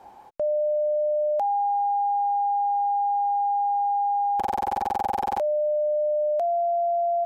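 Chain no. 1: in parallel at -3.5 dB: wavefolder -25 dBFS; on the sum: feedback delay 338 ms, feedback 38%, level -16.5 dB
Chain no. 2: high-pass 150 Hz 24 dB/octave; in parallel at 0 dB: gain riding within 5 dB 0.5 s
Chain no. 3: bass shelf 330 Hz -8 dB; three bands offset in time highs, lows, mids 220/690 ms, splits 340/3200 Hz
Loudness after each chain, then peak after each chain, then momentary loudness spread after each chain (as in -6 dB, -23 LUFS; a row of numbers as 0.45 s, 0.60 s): -21.5 LUFS, -18.5 LUFS, -26.5 LUFS; -16.5 dBFS, -8.0 dBFS, -17.0 dBFS; 4 LU, 2 LU, 3 LU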